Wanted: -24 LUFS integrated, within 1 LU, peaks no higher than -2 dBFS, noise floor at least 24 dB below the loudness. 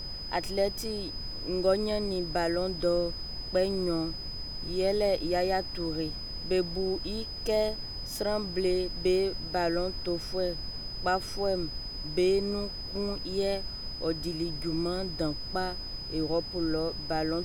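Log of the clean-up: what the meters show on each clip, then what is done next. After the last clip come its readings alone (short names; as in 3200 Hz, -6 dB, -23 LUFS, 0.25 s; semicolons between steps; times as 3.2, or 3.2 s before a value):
steady tone 5000 Hz; tone level -38 dBFS; noise floor -39 dBFS; noise floor target -55 dBFS; loudness -30.5 LUFS; peak -13.5 dBFS; loudness target -24.0 LUFS
-> notch 5000 Hz, Q 30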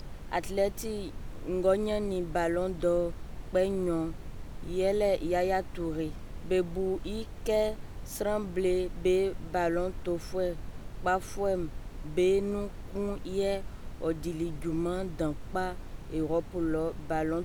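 steady tone none; noise floor -43 dBFS; noise floor target -56 dBFS
-> noise print and reduce 13 dB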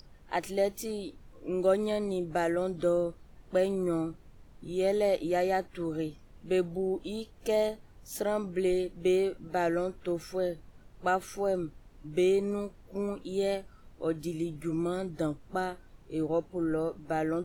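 noise floor -55 dBFS; noise floor target -56 dBFS
-> noise print and reduce 6 dB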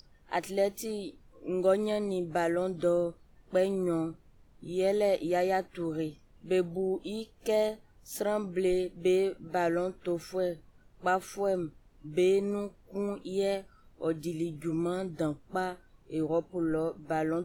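noise floor -61 dBFS; loudness -31.5 LUFS; peak -14.5 dBFS; loudness target -24.0 LUFS
-> gain +7.5 dB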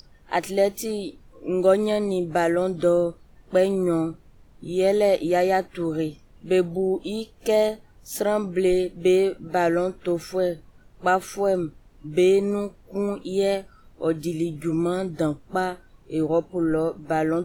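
loudness -24.0 LUFS; peak -7.0 dBFS; noise floor -53 dBFS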